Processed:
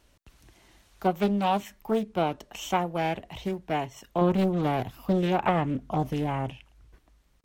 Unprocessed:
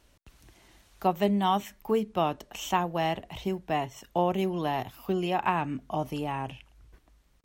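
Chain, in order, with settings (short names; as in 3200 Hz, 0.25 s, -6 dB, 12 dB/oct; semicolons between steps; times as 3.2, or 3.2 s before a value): 4.21–6.5 low shelf 390 Hz +7 dB; Doppler distortion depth 0.61 ms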